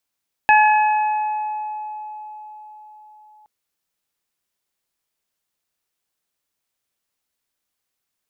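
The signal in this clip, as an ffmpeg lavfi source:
ffmpeg -f lavfi -i "aevalsrc='0.316*pow(10,-3*t/4.72)*sin(2*PI*852*t)+0.2*pow(10,-3*t/1.6)*sin(2*PI*1704*t)+0.141*pow(10,-3*t/2.27)*sin(2*PI*2556*t)':duration=2.97:sample_rate=44100" out.wav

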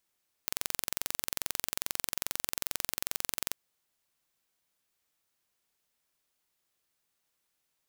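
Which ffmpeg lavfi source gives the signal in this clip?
ffmpeg -f lavfi -i "aevalsrc='0.668*eq(mod(n,1969),0)':duration=3.07:sample_rate=44100" out.wav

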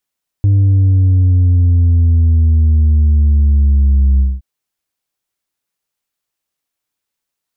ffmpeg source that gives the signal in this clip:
ffmpeg -f lavfi -i "aevalsrc='0.422*clip((3.97-t)/0.21,0,1)*tanh(1.41*sin(2*PI*100*3.97/log(65/100)*(exp(log(65/100)*t/3.97)-1)))/tanh(1.41)':duration=3.97:sample_rate=44100" out.wav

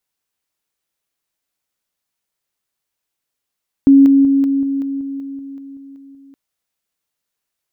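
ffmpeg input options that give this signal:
ffmpeg -f lavfi -i "aevalsrc='pow(10,(-4-3*floor(t/0.19))/20)*sin(2*PI*275*t)':duration=2.47:sample_rate=44100" out.wav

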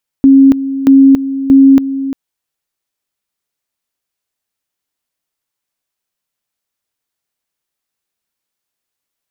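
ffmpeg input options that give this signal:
ffmpeg -f lavfi -i "aevalsrc='pow(10,(-1.5-13*gte(mod(t,0.63),0.28))/20)*sin(2*PI*271*t)':duration=1.89:sample_rate=44100" out.wav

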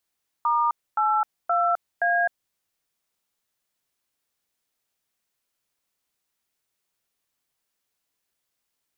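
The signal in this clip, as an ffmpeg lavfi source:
ffmpeg -f lavfi -i "aevalsrc='0.0841*clip(min(mod(t,0.522),0.259-mod(t,0.522))/0.002,0,1)*(eq(floor(t/0.522),0)*(sin(2*PI*941*mod(t,0.522))+sin(2*PI*1209*mod(t,0.522)))+eq(floor(t/0.522),1)*(sin(2*PI*852*mod(t,0.522))+sin(2*PI*1336*mod(t,0.522)))+eq(floor(t/0.522),2)*(sin(2*PI*697*mod(t,0.522))+sin(2*PI*1336*mod(t,0.522)))+eq(floor(t/0.522),3)*(sin(2*PI*697*mod(t,0.522))+sin(2*PI*1633*mod(t,0.522))))':duration=2.088:sample_rate=44100" out.wav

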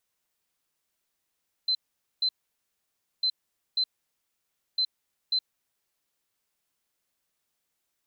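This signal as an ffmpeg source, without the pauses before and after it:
ffmpeg -f lavfi -i "aevalsrc='0.0794*sin(2*PI*4070*t)*clip(min(mod(mod(t,1.55),0.54),0.07-mod(mod(t,1.55),0.54))/0.005,0,1)*lt(mod(t,1.55),1.08)':duration=4.65:sample_rate=44100" out.wav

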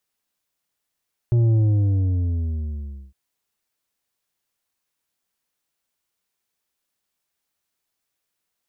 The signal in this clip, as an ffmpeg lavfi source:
ffmpeg -f lavfi -i "aevalsrc='0.178*clip((1.81-t)/1.6,0,1)*tanh(2.24*sin(2*PI*120*1.81/log(65/120)*(exp(log(65/120)*t/1.81)-1)))/tanh(2.24)':duration=1.81:sample_rate=44100" out.wav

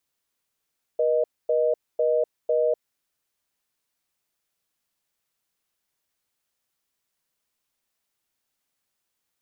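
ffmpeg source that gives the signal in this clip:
ffmpeg -f lavfi -i "aevalsrc='0.0841*(sin(2*PI*480*t)+sin(2*PI*620*t))*clip(min(mod(t,0.5),0.25-mod(t,0.5))/0.005,0,1)':duration=1.92:sample_rate=44100" out.wav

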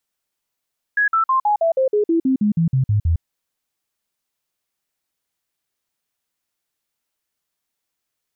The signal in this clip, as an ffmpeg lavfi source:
ffmpeg -f lavfi -i "aevalsrc='0.211*clip(min(mod(t,0.16),0.11-mod(t,0.16))/0.005,0,1)*sin(2*PI*1670*pow(2,-floor(t/0.16)/3)*mod(t,0.16))':duration=2.24:sample_rate=44100" out.wav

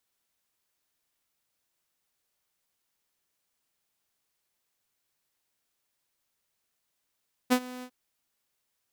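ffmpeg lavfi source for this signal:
ffmpeg -f lavfi -i "aevalsrc='0.168*(2*mod(251*t,1)-1)':duration=0.4:sample_rate=44100,afade=type=in:duration=0.024,afade=type=out:start_time=0.024:duration=0.068:silence=0.0944,afade=type=out:start_time=0.33:duration=0.07" out.wav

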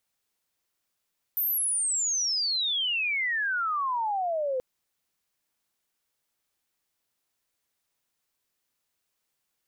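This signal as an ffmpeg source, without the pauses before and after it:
ffmpeg -f lavfi -i "aevalsrc='pow(10,(-24-1.5*t/3.23)/20)*sin(2*PI*14000*3.23/log(500/14000)*(exp(log(500/14000)*t/3.23)-1))':duration=3.23:sample_rate=44100" out.wav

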